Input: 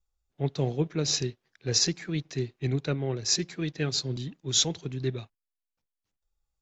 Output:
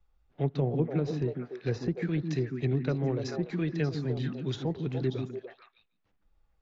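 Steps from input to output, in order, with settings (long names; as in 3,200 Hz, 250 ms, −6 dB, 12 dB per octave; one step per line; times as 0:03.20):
treble cut that deepens with the level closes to 990 Hz, closed at −23.5 dBFS
on a send: echo through a band-pass that steps 146 ms, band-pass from 220 Hz, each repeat 1.4 octaves, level −1 dB
on the sum: low-pass that shuts in the quiet parts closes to 2,400 Hz, open at −29 dBFS
multiband upward and downward compressor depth 40%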